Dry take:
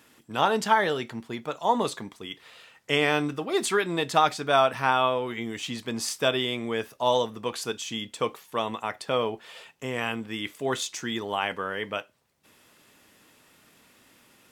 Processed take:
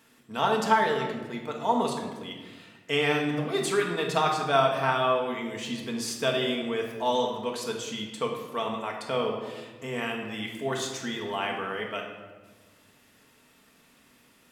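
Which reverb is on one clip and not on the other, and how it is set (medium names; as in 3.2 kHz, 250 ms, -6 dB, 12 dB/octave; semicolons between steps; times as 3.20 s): simulated room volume 1000 m³, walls mixed, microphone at 1.6 m; trim -4.5 dB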